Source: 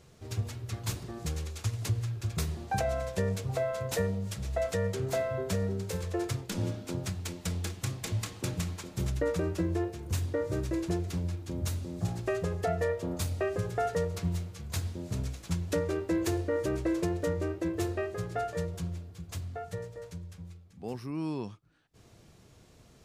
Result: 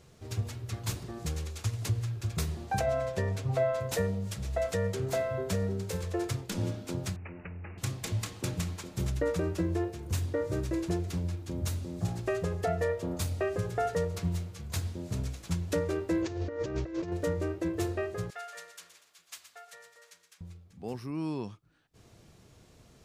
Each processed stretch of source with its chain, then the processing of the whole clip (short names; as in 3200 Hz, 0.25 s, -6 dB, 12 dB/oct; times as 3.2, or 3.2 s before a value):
2.86–3.8 high shelf 5600 Hz -8.5 dB + comb 7.5 ms, depth 55%
7.16–7.78 compressor, threshold -39 dBFS + careless resampling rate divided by 8×, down none, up filtered
16.22–17.12 steep low-pass 6500 Hz + negative-ratio compressor -33 dBFS, ratio -0.5
18.3–20.41 HPF 1400 Hz + feedback echo 0.12 s, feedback 45%, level -10.5 dB
whole clip: dry